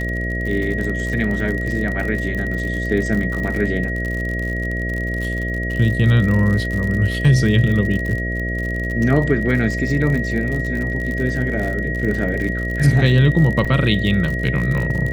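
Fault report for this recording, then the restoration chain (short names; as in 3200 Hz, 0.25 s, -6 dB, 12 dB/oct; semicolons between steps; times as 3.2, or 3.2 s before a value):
buzz 60 Hz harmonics 11 -24 dBFS
crackle 56/s -24 dBFS
tone 1900 Hz -25 dBFS
13.65–13.66 gap 5.4 ms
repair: de-click; notch 1900 Hz, Q 30; de-hum 60 Hz, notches 11; interpolate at 13.65, 5.4 ms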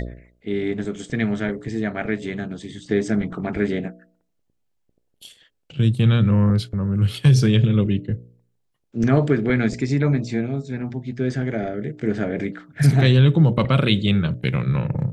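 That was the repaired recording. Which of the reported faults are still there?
none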